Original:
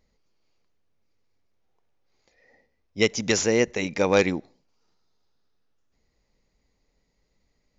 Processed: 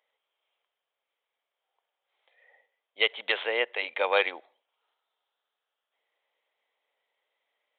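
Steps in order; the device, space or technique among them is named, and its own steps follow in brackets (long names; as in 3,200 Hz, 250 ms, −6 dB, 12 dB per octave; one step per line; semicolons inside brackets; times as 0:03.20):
musical greeting card (downsampling to 8,000 Hz; high-pass filter 580 Hz 24 dB per octave; parametric band 3,200 Hz +9 dB 0.21 octaves)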